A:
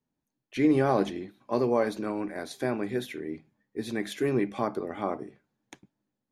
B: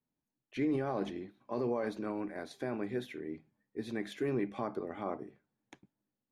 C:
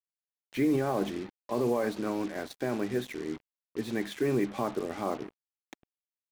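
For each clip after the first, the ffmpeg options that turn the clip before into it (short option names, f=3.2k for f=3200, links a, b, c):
-af "highshelf=f=5.5k:g=-10.5,alimiter=limit=-19dB:level=0:latency=1:release=19,volume=-5.5dB"
-af "acrusher=bits=7:mix=0:aa=0.5,volume=5.5dB"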